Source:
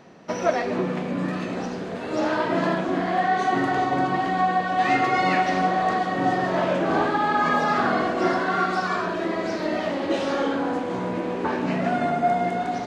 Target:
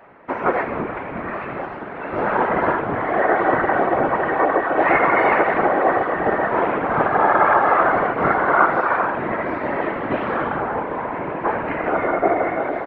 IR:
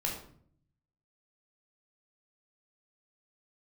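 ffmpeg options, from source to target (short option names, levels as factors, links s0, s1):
-filter_complex "[0:a]highpass=f=340:w=0.5412,highpass=f=340:w=1.3066,equalizer=f=470:t=q:w=4:g=-8,equalizer=f=960:t=q:w=4:g=5,equalizer=f=1400:t=q:w=4:g=6,equalizer=f=2100:t=q:w=4:g=6,lowpass=f=2500:w=0.5412,lowpass=f=2500:w=1.3066,asplit=4[s0][s1][s2][s3];[s1]asetrate=22050,aresample=44100,atempo=2,volume=0.708[s4];[s2]asetrate=29433,aresample=44100,atempo=1.49831,volume=0.562[s5];[s3]asetrate=37084,aresample=44100,atempo=1.18921,volume=0.631[s6];[s0][s4][s5][s6]amix=inputs=4:normalize=0,afftfilt=real='hypot(re,im)*cos(2*PI*random(0))':imag='hypot(re,im)*sin(2*PI*random(1))':win_size=512:overlap=0.75,volume=2"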